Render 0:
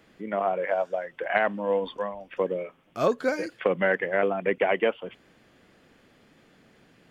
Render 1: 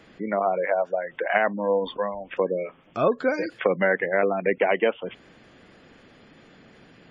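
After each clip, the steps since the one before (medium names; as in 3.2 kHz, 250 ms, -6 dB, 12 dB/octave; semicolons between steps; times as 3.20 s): spectral gate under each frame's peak -30 dB strong; in parallel at +1 dB: compression, threshold -33 dBFS, peak gain reduction 14.5 dB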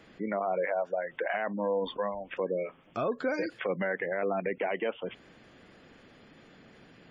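peak limiter -17.5 dBFS, peak gain reduction 10.5 dB; trim -3.5 dB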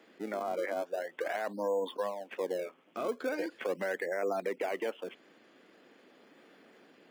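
in parallel at -10 dB: decimation with a swept rate 28×, swing 160% 0.42 Hz; on the sum: ladder high-pass 220 Hz, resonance 20%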